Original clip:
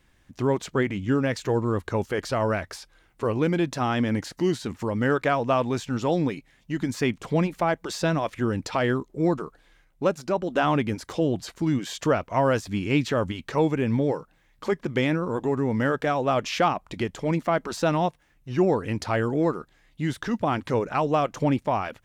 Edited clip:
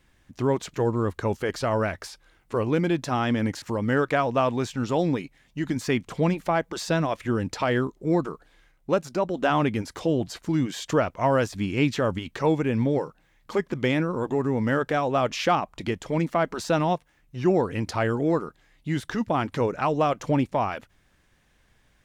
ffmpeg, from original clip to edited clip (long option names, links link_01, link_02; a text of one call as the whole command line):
ffmpeg -i in.wav -filter_complex "[0:a]asplit=3[link_01][link_02][link_03];[link_01]atrim=end=0.742[link_04];[link_02]atrim=start=1.428:end=4.312[link_05];[link_03]atrim=start=4.748[link_06];[link_04][link_05]acrossfade=duration=0.004:curve1=hsin:curve2=hsin[link_07];[link_07][link_06]acrossfade=duration=0.004:curve1=hsin:curve2=hsin" out.wav